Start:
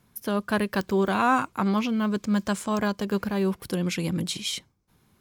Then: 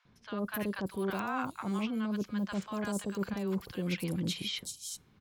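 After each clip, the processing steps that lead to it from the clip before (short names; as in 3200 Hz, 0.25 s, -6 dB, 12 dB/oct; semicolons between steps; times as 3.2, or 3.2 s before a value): reverse; compressor 5:1, threshold -31 dBFS, peak gain reduction 12.5 dB; reverse; three bands offset in time mids, lows, highs 50/380 ms, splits 890/5200 Hz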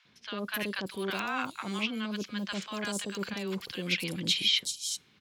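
weighting filter D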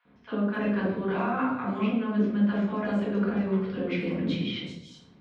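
LPF 1000 Hz 12 dB/oct; harmonic-percussive split percussive +5 dB; shoebox room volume 180 m³, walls mixed, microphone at 1.8 m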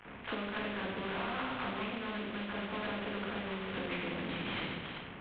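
CVSD 16 kbps; compressor 6:1, threshold -33 dBFS, peak gain reduction 13 dB; spectral compressor 2:1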